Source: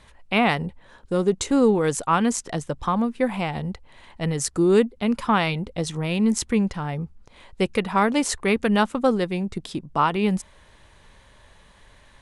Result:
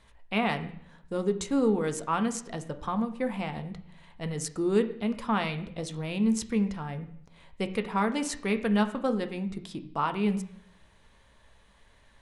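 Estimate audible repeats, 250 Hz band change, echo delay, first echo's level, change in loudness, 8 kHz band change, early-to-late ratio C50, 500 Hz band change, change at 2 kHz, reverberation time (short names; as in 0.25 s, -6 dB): none, -6.0 dB, none, none, -7.0 dB, -8.5 dB, 13.0 dB, -7.5 dB, -8.0 dB, 0.65 s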